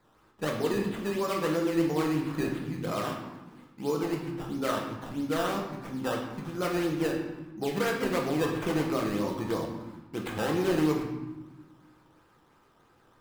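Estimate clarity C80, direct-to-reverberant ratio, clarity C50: 6.5 dB, −1.0 dB, 4.0 dB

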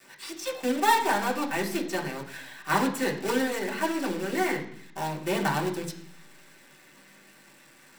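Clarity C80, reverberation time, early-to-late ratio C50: 13.0 dB, 0.65 s, 9.5 dB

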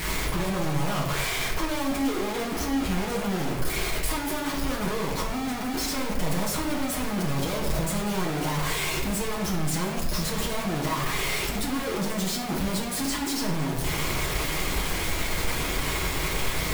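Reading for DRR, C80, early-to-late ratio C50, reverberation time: −5.0 dB, 7.0 dB, 4.0 dB, 1.2 s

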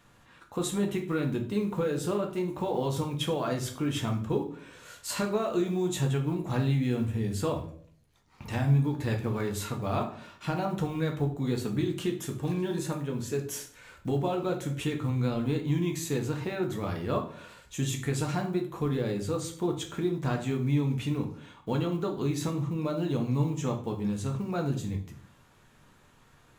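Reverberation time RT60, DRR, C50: 0.55 s, 2.0 dB, 10.0 dB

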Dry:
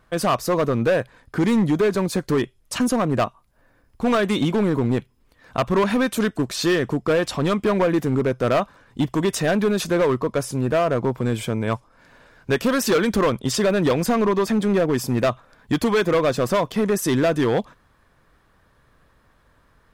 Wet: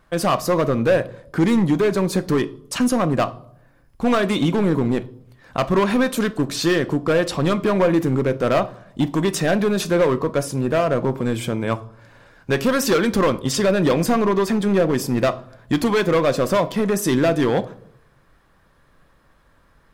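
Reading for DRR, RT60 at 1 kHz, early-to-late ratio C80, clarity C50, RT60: 11.0 dB, 0.60 s, 22.5 dB, 19.0 dB, 0.70 s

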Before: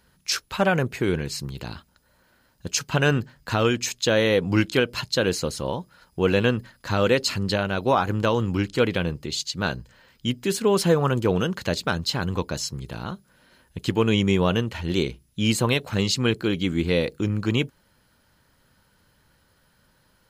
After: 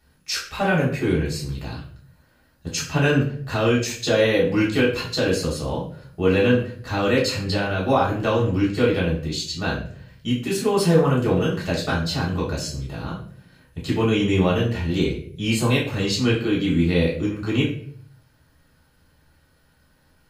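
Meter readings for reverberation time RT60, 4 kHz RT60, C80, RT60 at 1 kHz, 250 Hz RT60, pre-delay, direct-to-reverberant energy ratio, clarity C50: 0.55 s, 0.40 s, 11.0 dB, 0.45 s, 0.75 s, 3 ms, −5.5 dB, 6.0 dB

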